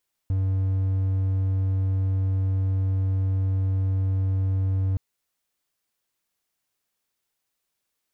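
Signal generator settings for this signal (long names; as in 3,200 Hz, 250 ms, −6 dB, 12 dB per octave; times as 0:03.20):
tone triangle 95.4 Hz −18.5 dBFS 4.67 s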